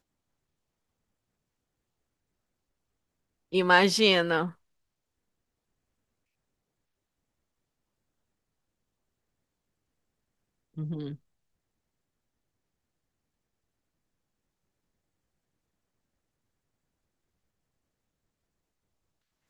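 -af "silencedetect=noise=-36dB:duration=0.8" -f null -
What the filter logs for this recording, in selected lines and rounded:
silence_start: 0.00
silence_end: 3.53 | silence_duration: 3.53
silence_start: 4.49
silence_end: 10.78 | silence_duration: 6.28
silence_start: 11.15
silence_end: 19.49 | silence_duration: 8.35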